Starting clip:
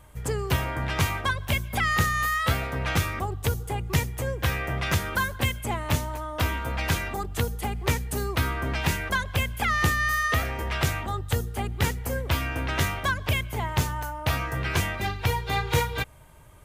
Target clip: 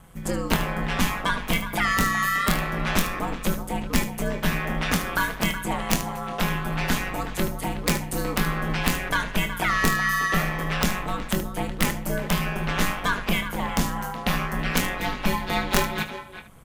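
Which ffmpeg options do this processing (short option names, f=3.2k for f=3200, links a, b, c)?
-filter_complex "[0:a]aeval=exprs='val(0)*sin(2*PI*93*n/s)':c=same,asplit=2[a][b];[b]adelay=370,highpass=300,lowpass=3.4k,asoftclip=type=hard:threshold=-19.5dB,volume=-11dB[c];[a][c]amix=inputs=2:normalize=0,aeval=exprs='(mod(4.22*val(0)+1,2)-1)/4.22':c=same,asplit=2[d][e];[e]aecho=0:1:24|75:0.355|0.237[f];[d][f]amix=inputs=2:normalize=0,volume=4dB"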